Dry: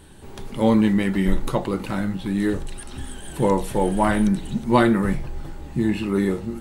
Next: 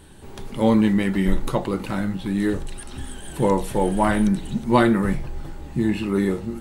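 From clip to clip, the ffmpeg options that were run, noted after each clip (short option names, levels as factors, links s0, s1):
-af anull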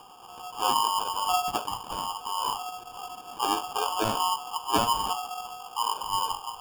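-af "lowpass=f=2800:t=q:w=0.5098,lowpass=f=2800:t=q:w=0.6013,lowpass=f=2800:t=q:w=0.9,lowpass=f=2800:t=q:w=2.563,afreqshift=-3300,acrusher=samples=22:mix=1:aa=0.000001,acompressor=mode=upward:threshold=0.0158:ratio=2.5,volume=0.398"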